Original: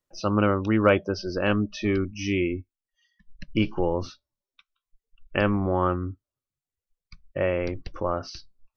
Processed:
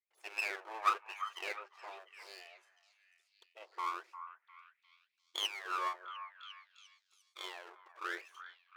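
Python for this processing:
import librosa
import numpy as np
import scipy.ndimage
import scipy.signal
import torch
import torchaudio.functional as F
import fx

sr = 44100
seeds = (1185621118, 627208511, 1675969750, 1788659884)

y = fx.wah_lfo(x, sr, hz=0.98, low_hz=570.0, high_hz=1600.0, q=20.0)
y = np.abs(y)
y = fx.brickwall_highpass(y, sr, low_hz=330.0)
y = fx.echo_stepped(y, sr, ms=351, hz=1200.0, octaves=0.7, feedback_pct=70, wet_db=-10.0)
y = y * 10.0 ** (10.0 / 20.0)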